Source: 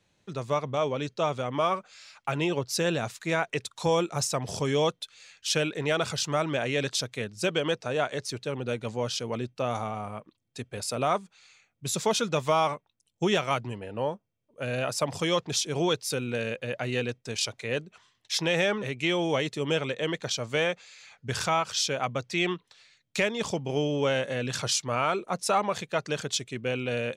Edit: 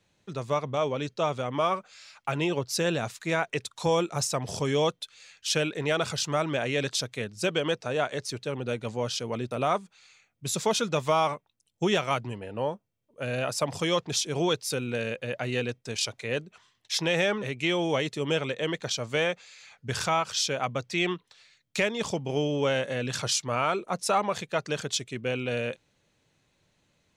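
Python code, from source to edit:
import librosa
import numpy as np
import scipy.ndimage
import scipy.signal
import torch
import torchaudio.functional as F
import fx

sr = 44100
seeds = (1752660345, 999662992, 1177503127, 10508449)

y = fx.edit(x, sr, fx.cut(start_s=9.51, length_s=1.4), tone=tone)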